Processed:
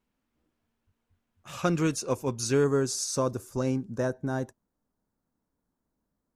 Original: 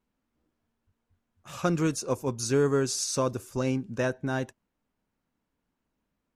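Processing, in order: peaking EQ 2.7 kHz +2.5 dB 1.1 oct, from 2.64 s -7.5 dB, from 3.85 s -14.5 dB

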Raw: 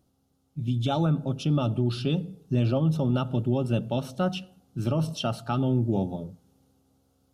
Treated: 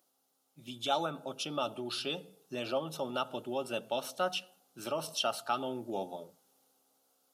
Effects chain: high-pass 610 Hz 12 dB/octave; treble shelf 9.2 kHz +9 dB

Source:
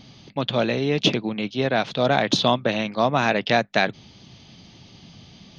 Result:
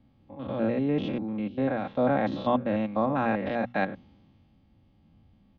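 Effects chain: spectrogram pixelated in time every 100 ms; low-pass 1.5 kHz 12 dB/octave; bass shelf 170 Hz +7 dB; hum notches 60/120/180/240 Hz; comb 3.7 ms, depth 48%; three bands expanded up and down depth 40%; trim -4.5 dB

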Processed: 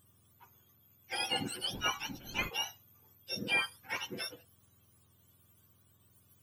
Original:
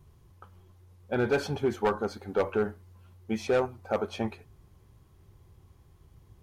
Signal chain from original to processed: spectrum inverted on a logarithmic axis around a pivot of 1.1 kHz; 1.73–2.48 s: wind noise 230 Hz -41 dBFS; trim -3.5 dB

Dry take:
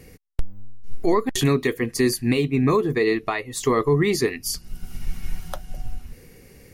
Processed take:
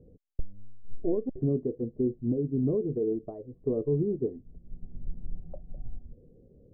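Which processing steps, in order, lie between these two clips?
Chebyshev low-pass 590 Hz, order 4; trim -7 dB

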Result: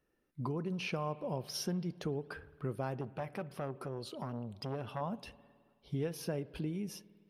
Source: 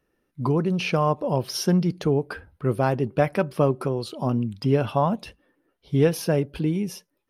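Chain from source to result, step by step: compression 2.5:1, threshold -30 dBFS, peak gain reduction 11 dB; spring tank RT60 1.9 s, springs 53 ms, chirp 65 ms, DRR 18.5 dB; 3.01–5.01 s: transformer saturation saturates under 770 Hz; trim -7 dB

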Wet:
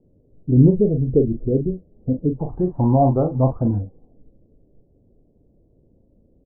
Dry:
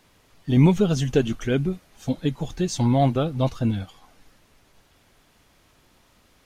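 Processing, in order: steep low-pass 520 Hz 36 dB/octave, from 2.39 s 1 kHz, from 3.77 s 530 Hz; dynamic bell 190 Hz, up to -5 dB, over -33 dBFS, Q 2.4; doubling 39 ms -7 dB; trim +4.5 dB

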